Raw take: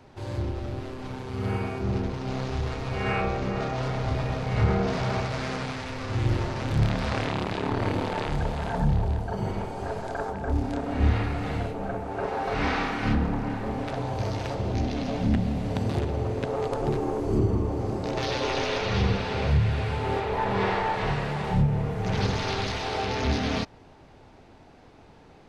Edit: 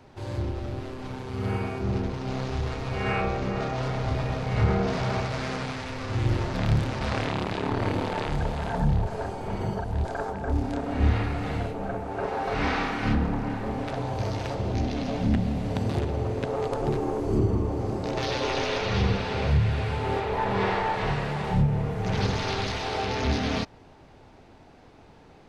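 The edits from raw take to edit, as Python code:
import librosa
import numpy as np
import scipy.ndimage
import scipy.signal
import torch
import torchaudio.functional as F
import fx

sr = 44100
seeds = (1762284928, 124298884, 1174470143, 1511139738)

y = fx.edit(x, sr, fx.reverse_span(start_s=6.54, length_s=0.47),
    fx.reverse_span(start_s=9.07, length_s=0.98), tone=tone)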